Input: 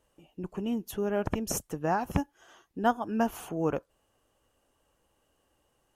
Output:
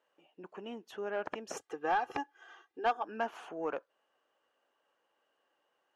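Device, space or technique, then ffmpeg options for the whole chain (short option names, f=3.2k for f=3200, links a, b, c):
intercom: -filter_complex "[0:a]asettb=1/sr,asplit=3[a][b][c];[a]atrim=end=1.564[d];[b]atrim=start=1.56:end=3.03,asetpts=PTS-STARTPTS,afade=t=in:d=0.004:c=qsin,afade=t=out:st=1.466:d=0.004:c=qsin,aecho=1:1:2.5:0.87,atrim=end_sample=64827[e];[c]atrim=start=3.026[f];[d][e]acrossfade=d=0.004:c1=hsin:c2=qsin[g];[g][f]acrossfade=d=0.004:c1=qsin:c2=hsin,highpass=470,lowpass=3.8k,equalizer=f=1.6k:t=o:w=0.55:g=4,asoftclip=type=tanh:threshold=-19dB,volume=-3dB"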